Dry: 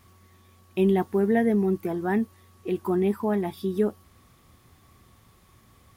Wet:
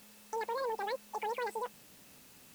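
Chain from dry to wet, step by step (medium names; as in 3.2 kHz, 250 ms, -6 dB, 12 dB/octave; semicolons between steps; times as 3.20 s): peak limiter -22 dBFS, peak gain reduction 10.5 dB; added noise white -48 dBFS; speed mistake 33 rpm record played at 78 rpm; trim -7 dB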